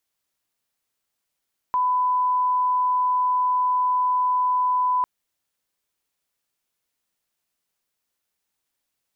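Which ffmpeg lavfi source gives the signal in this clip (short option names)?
-f lavfi -i "sine=f=1000:d=3.3:r=44100,volume=0.06dB"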